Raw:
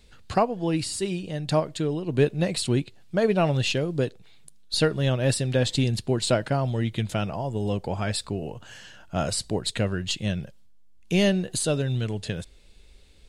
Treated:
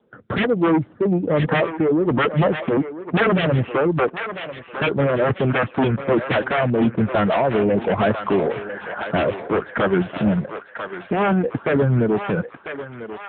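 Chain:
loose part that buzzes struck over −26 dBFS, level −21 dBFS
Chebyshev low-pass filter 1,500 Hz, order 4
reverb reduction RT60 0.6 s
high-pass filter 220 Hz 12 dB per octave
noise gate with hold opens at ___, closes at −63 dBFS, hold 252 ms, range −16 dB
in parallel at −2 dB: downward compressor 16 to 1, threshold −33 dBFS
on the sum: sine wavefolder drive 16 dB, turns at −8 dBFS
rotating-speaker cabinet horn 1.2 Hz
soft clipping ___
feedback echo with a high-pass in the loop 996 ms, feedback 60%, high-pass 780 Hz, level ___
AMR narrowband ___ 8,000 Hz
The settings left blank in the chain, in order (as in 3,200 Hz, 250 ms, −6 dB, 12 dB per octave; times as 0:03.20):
−53 dBFS, −12 dBFS, −6.5 dB, 7.95 kbit/s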